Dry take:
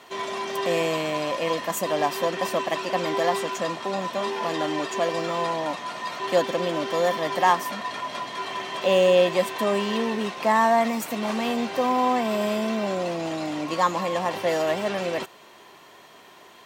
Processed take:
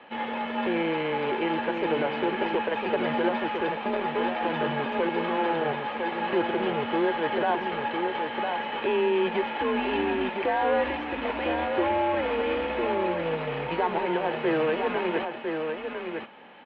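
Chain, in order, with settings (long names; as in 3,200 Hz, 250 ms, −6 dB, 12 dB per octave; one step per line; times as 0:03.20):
brickwall limiter −16 dBFS, peak gain reduction 8.5 dB
harmonic generator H 4 −18 dB, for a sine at −16 dBFS
single-tap delay 1,004 ms −5.5 dB
single-sideband voice off tune −160 Hz 380–3,200 Hz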